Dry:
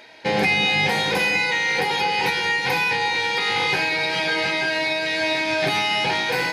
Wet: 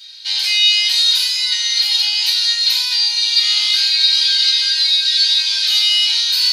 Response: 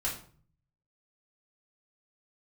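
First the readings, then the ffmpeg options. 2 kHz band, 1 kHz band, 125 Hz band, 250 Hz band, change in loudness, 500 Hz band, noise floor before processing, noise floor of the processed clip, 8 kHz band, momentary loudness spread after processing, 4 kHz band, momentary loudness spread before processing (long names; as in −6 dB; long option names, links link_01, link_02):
−5.5 dB, below −15 dB, below −40 dB, below −40 dB, +8.0 dB, below −35 dB, −25 dBFS, −20 dBFS, +12.5 dB, 3 LU, +14.0 dB, 3 LU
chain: -filter_complex "[0:a]highpass=frequency=1400:width=0.5412,highpass=frequency=1400:width=1.3066,highshelf=frequency=2800:width_type=q:width=3:gain=13[link_01];[1:a]atrim=start_sample=2205[link_02];[link_01][link_02]afir=irnorm=-1:irlink=0,volume=-6.5dB"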